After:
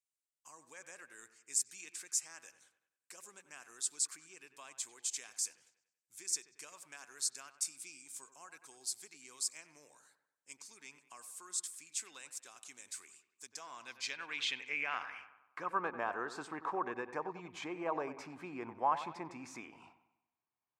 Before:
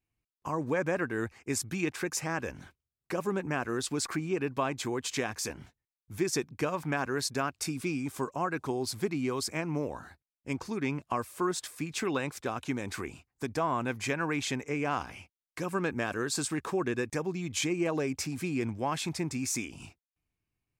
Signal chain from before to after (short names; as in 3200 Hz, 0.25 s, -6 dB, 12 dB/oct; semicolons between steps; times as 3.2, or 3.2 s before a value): dark delay 95 ms, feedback 46%, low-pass 2500 Hz, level -12 dB; band-pass sweep 8000 Hz -> 950 Hz, 13.35–15.88; gain +3.5 dB